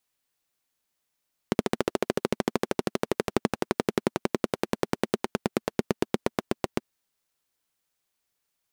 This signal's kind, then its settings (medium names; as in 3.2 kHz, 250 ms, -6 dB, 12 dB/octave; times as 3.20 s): single-cylinder engine model, changing speed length 5.28 s, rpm 1700, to 900, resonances 230/370 Hz